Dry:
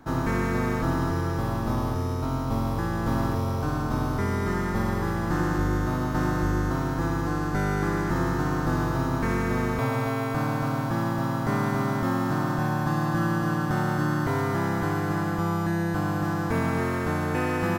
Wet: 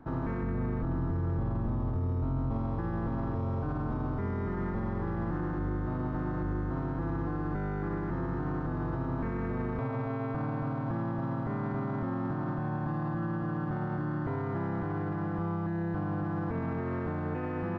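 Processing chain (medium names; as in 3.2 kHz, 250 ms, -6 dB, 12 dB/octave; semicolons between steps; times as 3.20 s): 0.42–2.51 s: bass shelf 220 Hz +8.5 dB; peak limiter -23.5 dBFS, peak gain reduction 13.5 dB; tape spacing loss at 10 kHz 44 dB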